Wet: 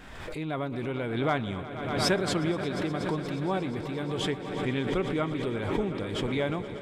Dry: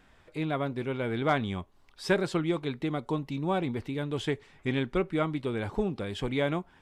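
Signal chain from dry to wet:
automatic gain control gain up to 3.5 dB
on a send: echo that builds up and dies away 119 ms, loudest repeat 5, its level −16 dB
on the sum: background raised ahead of every attack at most 40 dB per second
level −5 dB

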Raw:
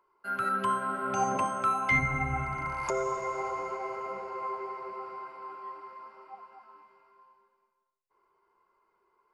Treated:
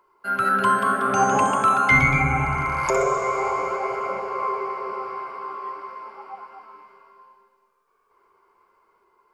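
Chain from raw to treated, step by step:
delay with pitch and tempo change per echo 221 ms, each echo +1 semitone, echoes 2, each echo −6 dB
level +8.5 dB

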